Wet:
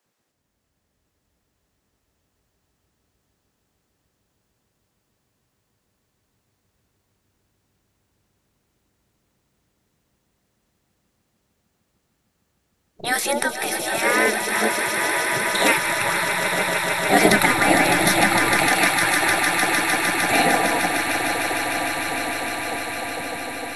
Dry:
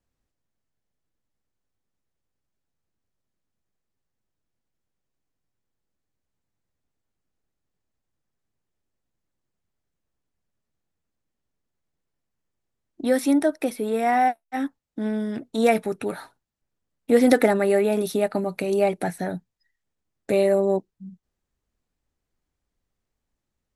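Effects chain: backward echo that repeats 451 ms, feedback 77%, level -13 dB; echo with a slow build-up 152 ms, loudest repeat 8, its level -9 dB; spectral gate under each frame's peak -15 dB weak; 17.25–18.68 s: bass shelf 360 Hz +7.5 dB; loudness maximiser +13 dB; trim -1 dB

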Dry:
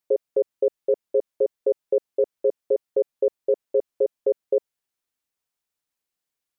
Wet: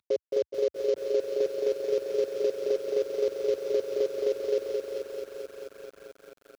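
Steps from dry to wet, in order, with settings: CVSD coder 32 kbps; high-pass 77 Hz 24 dB/octave; delay 420 ms -16.5 dB; peak limiter -18 dBFS, peak gain reduction 6 dB; bass shelf 120 Hz +5.5 dB; bit-crushed delay 219 ms, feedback 80%, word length 9-bit, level -4 dB

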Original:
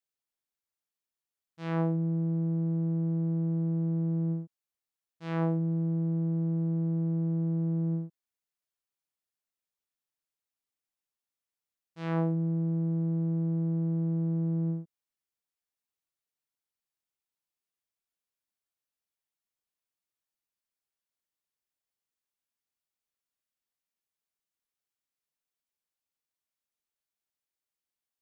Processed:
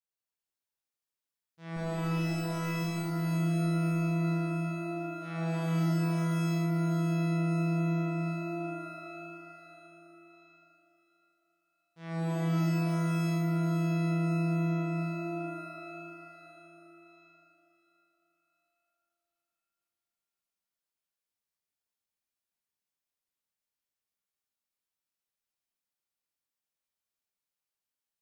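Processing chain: 1.76–2.82 s: comb filter that takes the minimum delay 8 ms; pitch-shifted reverb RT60 3.4 s, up +12 st, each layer -2 dB, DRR -6.5 dB; trim -9 dB

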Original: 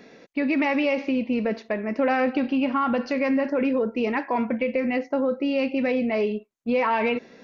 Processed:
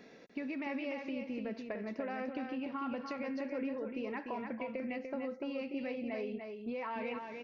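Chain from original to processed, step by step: compression 6:1, threshold -30 dBFS, peak gain reduction 11 dB; on a send: delay 295 ms -5.5 dB; on the sum: trim -7.5 dB

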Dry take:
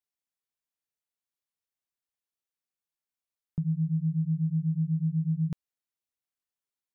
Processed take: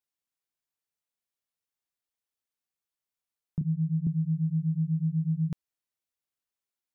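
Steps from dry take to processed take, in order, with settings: 3.61–4.07 s: inverse Chebyshev low-pass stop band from 500 Hz

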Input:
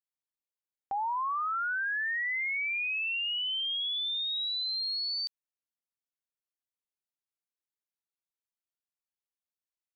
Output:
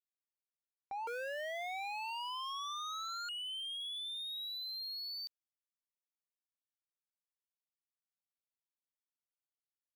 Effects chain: 1.07–3.29 s: cycle switcher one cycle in 2, inverted; power-law waveshaper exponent 1.4; trim -8.5 dB

